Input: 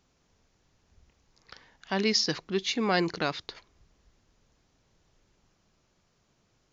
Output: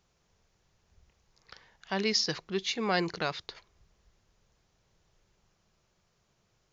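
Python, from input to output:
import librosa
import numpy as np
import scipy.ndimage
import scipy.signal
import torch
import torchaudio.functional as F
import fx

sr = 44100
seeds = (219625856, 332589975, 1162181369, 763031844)

y = fx.peak_eq(x, sr, hz=270.0, db=-12.0, octaves=0.3)
y = F.gain(torch.from_numpy(y), -2.0).numpy()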